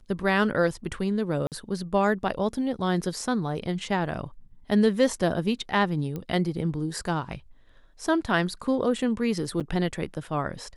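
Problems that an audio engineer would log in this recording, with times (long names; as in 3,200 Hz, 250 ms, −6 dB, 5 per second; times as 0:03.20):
0:01.47–0:01.52: drop-out 48 ms
0:06.16: click −21 dBFS
0:09.60–0:09.61: drop-out 7 ms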